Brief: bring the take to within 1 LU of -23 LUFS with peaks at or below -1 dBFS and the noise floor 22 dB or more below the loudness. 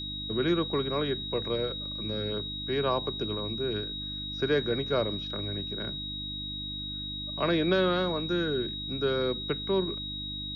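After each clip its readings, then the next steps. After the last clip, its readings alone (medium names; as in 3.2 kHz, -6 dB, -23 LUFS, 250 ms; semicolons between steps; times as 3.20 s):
hum 50 Hz; highest harmonic 300 Hz; hum level -40 dBFS; steady tone 3.8 kHz; tone level -35 dBFS; loudness -30.0 LUFS; peak level -15.0 dBFS; loudness target -23.0 LUFS
-> de-hum 50 Hz, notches 6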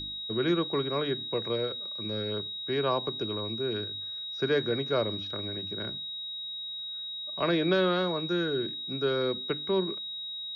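hum not found; steady tone 3.8 kHz; tone level -35 dBFS
-> band-stop 3.8 kHz, Q 30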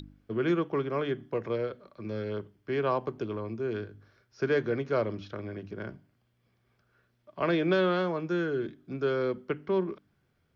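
steady tone not found; loudness -31.0 LUFS; peak level -15.5 dBFS; loudness target -23.0 LUFS
-> trim +8 dB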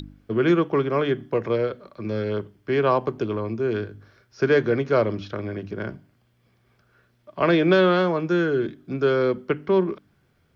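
loudness -23.0 LUFS; peak level -7.5 dBFS; noise floor -65 dBFS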